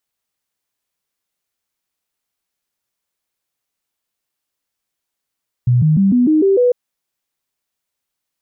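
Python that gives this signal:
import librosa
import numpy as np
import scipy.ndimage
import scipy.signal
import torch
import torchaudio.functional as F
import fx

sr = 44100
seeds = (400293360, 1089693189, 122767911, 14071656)

y = fx.stepped_sweep(sr, from_hz=123.0, direction='up', per_octave=3, tones=7, dwell_s=0.15, gap_s=0.0, level_db=-9.0)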